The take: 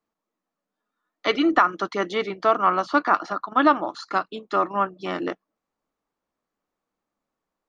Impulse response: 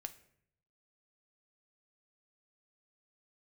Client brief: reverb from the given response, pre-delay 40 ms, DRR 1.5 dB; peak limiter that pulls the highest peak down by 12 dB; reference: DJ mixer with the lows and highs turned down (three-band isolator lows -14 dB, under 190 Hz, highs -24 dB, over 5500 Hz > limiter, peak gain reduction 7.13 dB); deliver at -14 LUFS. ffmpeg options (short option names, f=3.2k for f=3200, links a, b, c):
-filter_complex "[0:a]alimiter=limit=-17.5dB:level=0:latency=1,asplit=2[a][b];[1:a]atrim=start_sample=2205,adelay=40[c];[b][c]afir=irnorm=-1:irlink=0,volume=2.5dB[d];[a][d]amix=inputs=2:normalize=0,acrossover=split=190 5500:gain=0.2 1 0.0631[e][f][g];[e][f][g]amix=inputs=3:normalize=0,volume=15.5dB,alimiter=limit=-4dB:level=0:latency=1"